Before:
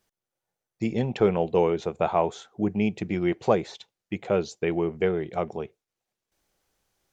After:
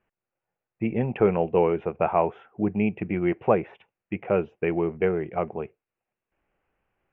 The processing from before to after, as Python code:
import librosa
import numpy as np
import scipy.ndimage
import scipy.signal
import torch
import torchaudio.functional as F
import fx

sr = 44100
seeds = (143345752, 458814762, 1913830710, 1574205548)

y = scipy.signal.sosfilt(scipy.signal.ellip(4, 1.0, 40, 2700.0, 'lowpass', fs=sr, output='sos'), x)
y = F.gain(torch.from_numpy(y), 1.5).numpy()